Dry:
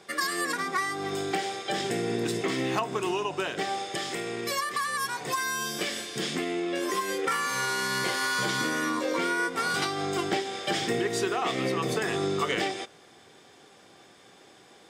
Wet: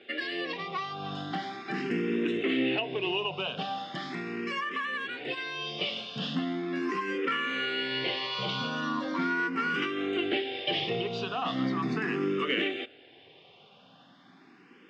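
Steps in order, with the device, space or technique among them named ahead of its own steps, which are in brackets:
barber-pole phaser into a guitar amplifier (frequency shifter mixed with the dry sound +0.39 Hz; soft clipping −21 dBFS, distortion −23 dB; loudspeaker in its box 100–4,000 Hz, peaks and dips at 170 Hz +5 dB, 260 Hz +9 dB, 850 Hz −3 dB, 2,800 Hz +10 dB)

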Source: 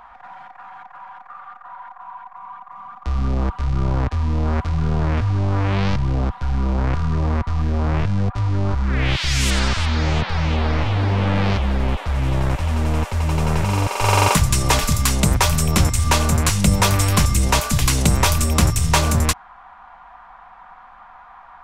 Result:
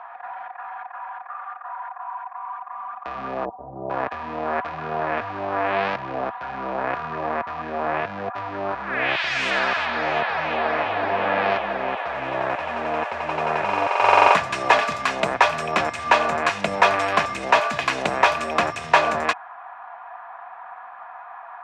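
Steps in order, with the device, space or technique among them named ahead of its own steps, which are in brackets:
0:03.45–0:03.90: Butterworth low-pass 800 Hz 36 dB per octave
tin-can telephone (band-pass filter 530–2,200 Hz; hollow resonant body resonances 680/1,700/2,500 Hz, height 9 dB)
level +4 dB

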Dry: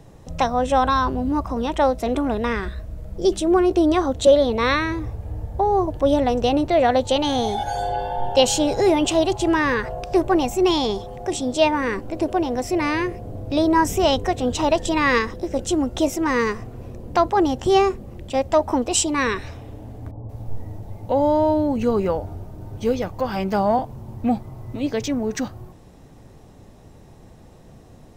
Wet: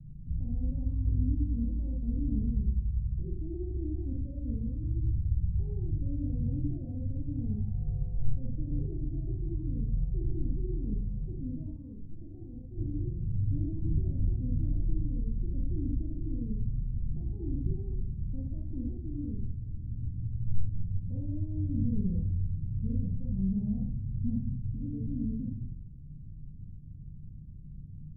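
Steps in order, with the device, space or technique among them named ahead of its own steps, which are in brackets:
club heard from the street (brickwall limiter −13.5 dBFS, peak gain reduction 8 dB; low-pass filter 170 Hz 24 dB per octave; convolution reverb RT60 0.55 s, pre-delay 34 ms, DRR −0.5 dB)
0:11.76–0:12.78: tilt shelving filter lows −9.5 dB, about 930 Hz

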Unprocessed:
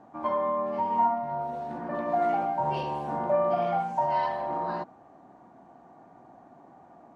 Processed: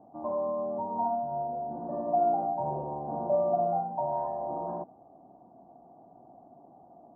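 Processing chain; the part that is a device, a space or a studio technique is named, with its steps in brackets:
under water (low-pass filter 830 Hz 24 dB per octave; parametric band 690 Hz +4.5 dB 0.32 octaves)
level −2.5 dB

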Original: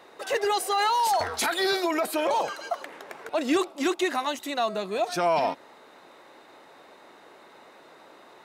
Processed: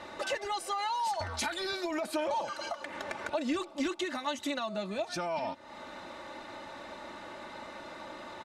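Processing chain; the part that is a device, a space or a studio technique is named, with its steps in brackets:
jukebox (low-pass filter 7,900 Hz 12 dB per octave; low shelf with overshoot 210 Hz +10.5 dB, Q 1.5; downward compressor 5 to 1, threshold −40 dBFS, peak gain reduction 17 dB)
comb filter 3.4 ms, depth 77%
level +5 dB

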